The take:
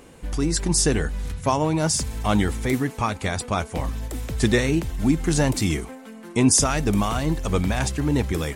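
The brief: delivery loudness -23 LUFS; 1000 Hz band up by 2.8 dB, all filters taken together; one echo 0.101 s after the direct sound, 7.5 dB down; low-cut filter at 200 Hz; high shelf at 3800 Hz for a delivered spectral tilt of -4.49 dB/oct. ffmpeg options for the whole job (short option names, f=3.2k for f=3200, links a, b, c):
-af "highpass=200,equalizer=f=1k:t=o:g=4,highshelf=f=3.8k:g=-7,aecho=1:1:101:0.422,volume=1dB"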